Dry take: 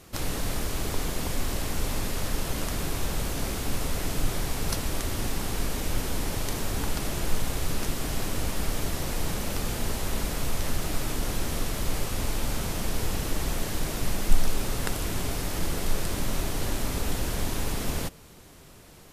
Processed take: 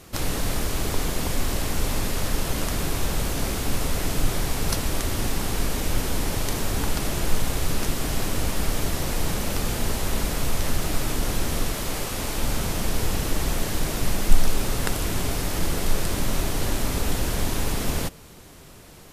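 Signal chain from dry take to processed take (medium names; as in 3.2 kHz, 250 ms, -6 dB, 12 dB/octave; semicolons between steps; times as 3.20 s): 11.72–12.38 s: bass shelf 150 Hz -7.5 dB; trim +4 dB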